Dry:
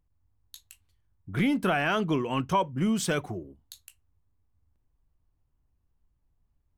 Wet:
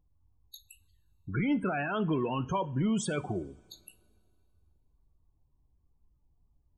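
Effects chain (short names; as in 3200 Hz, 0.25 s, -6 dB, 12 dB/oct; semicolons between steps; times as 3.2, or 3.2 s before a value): limiter -24.5 dBFS, peak gain reduction 10.5 dB; loudest bins only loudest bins 32; two-slope reverb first 0.36 s, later 2.5 s, from -19 dB, DRR 14 dB; gain +2.5 dB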